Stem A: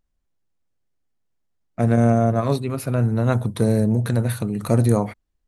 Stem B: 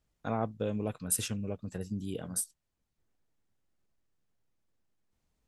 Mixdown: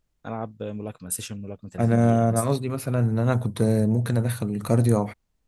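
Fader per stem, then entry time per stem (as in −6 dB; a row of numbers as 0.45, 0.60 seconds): −2.5, +0.5 decibels; 0.00, 0.00 seconds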